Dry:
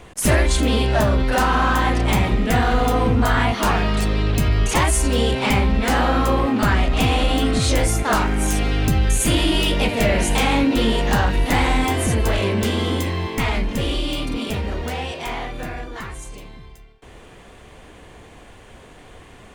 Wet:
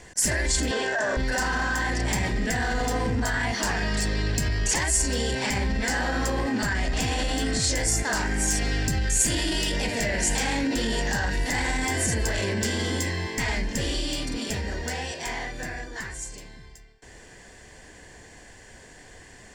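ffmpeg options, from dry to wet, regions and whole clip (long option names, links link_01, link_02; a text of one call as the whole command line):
ffmpeg -i in.wav -filter_complex "[0:a]asettb=1/sr,asplit=3[link_01][link_02][link_03];[link_01]atrim=end=0.714[link_04];[link_02]atrim=start=0.71:end=1.17,asetpts=PTS-STARTPTS,afade=type=in:duration=0.004:curve=qsin,afade=type=out:start_time=0.456:duration=0.004:curve=qsin,acrusher=bits=7:dc=4:mix=0:aa=0.000001,highpass=320,equalizer=frequency=460:width_type=q:width=4:gain=6,equalizer=frequency=680:width_type=q:width=4:gain=6,equalizer=frequency=1100:width_type=q:width=4:gain=6,equalizer=frequency=1600:width_type=q:width=4:gain=9,equalizer=frequency=4700:width_type=q:width=4:gain=-7,lowpass=frequency=7500:width=0.5412,lowpass=frequency=7500:width=1.3066[link_05];[link_03]atrim=start=1.166[link_06];[link_04][link_05]acrossfade=duration=0.004:curve1=hsin:curve2=qsin[link_07];[link_07][link_06]acrossfade=duration=0.004:curve1=qsin:curve2=hsin,superequalizer=10b=0.562:11b=2.51:14b=2.51,alimiter=limit=-12.5dB:level=0:latency=1:release=19,equalizer=frequency=7300:width_type=o:width=0.5:gain=15,volume=-6dB" out.wav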